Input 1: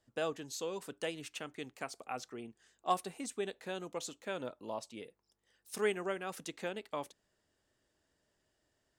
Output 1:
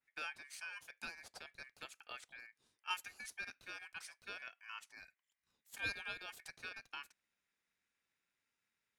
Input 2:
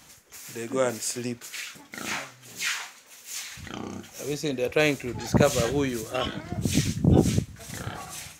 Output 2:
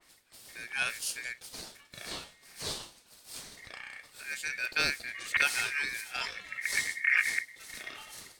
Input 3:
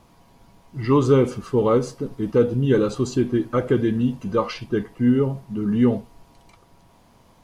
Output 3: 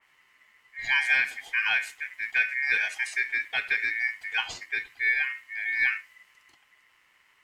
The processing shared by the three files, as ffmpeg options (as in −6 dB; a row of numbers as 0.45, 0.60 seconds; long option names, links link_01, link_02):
-af "aeval=exprs='val(0)*sin(2*PI*2000*n/s)':channel_layout=same,adynamicequalizer=threshold=0.0178:dfrequency=2700:dqfactor=0.7:tfrequency=2700:tqfactor=0.7:attack=5:release=100:ratio=0.375:range=3:mode=boostabove:tftype=highshelf,volume=-6.5dB"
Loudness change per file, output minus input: −7.0, −4.0, −5.0 LU